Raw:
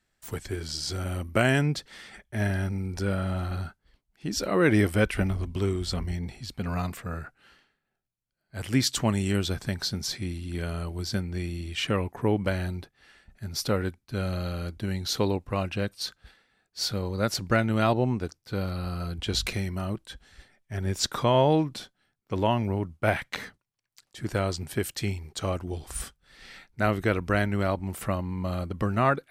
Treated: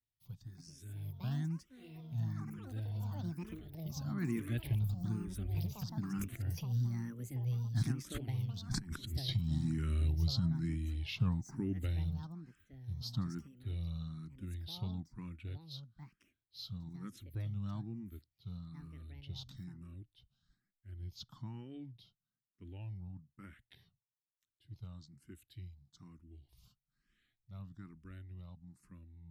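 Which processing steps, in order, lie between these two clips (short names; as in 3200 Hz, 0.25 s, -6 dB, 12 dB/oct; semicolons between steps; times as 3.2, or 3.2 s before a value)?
Doppler pass-by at 8.74, 32 m/s, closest 8.4 m; band shelf 1100 Hz -8.5 dB 2.9 oct; negative-ratio compressor -45 dBFS, ratio -1; echoes that change speed 0.379 s, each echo +7 st, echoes 3, each echo -6 dB; ten-band EQ 125 Hz +9 dB, 500 Hz -10 dB, 8000 Hz -9 dB; endless phaser +1.1 Hz; gain +9 dB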